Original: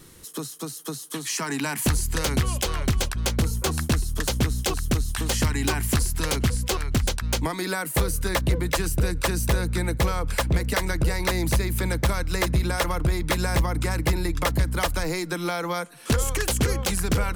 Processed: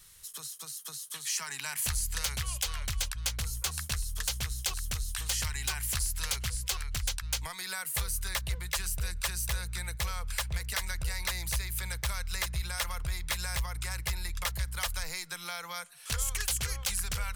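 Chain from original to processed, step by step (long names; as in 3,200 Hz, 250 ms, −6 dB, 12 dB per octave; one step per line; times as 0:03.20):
guitar amp tone stack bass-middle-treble 10-0-10
level −2.5 dB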